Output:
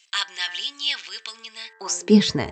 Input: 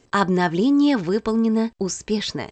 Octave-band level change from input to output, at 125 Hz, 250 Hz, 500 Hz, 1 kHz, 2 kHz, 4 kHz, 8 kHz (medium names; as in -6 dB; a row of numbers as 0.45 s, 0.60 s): -2.5 dB, -4.0 dB, -4.0 dB, -10.5 dB, -1.5 dB, +7.5 dB, +3.5 dB